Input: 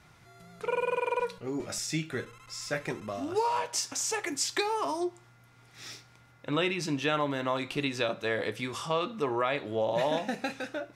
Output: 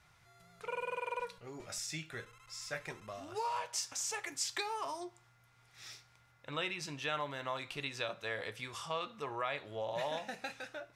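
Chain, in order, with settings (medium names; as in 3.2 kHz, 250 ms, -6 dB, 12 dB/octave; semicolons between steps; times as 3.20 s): peaking EQ 270 Hz -11 dB 1.6 oct; trim -6 dB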